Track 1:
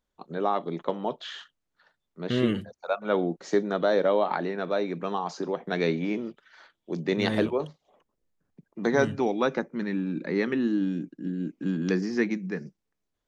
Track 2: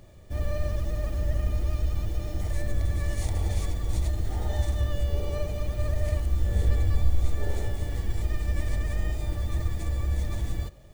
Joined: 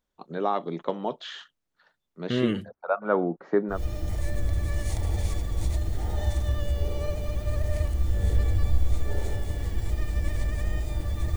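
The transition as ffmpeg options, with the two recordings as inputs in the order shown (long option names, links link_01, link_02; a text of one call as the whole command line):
ffmpeg -i cue0.wav -i cue1.wav -filter_complex "[0:a]asettb=1/sr,asplit=3[link_01][link_02][link_03];[link_01]atrim=end=2.684[link_04];[link_02]atrim=start=2.68:end=3.82,asetpts=PTS-STARTPTS,afade=type=in:duration=0.004:curve=qsin,afade=type=out:start_time=1.136:duration=0.004:curve=qsin,lowpass=frequency=1300:width_type=q:width=1.6[link_05];[link_03]atrim=start=3.816[link_06];[link_04][link_05]acrossfade=duration=0.004:curve1=hsin:curve2=qsin[link_07];[link_07][link_06]acrossfade=duration=0.004:curve1=qsin:curve2=hsin,apad=whole_dur=11.36,atrim=end=11.36,atrim=end=3.82,asetpts=PTS-STARTPTS[link_08];[1:a]atrim=start=2:end=9.68,asetpts=PTS-STARTPTS[link_09];[link_08][link_09]acrossfade=duration=0.14:curve1=tri:curve2=tri" out.wav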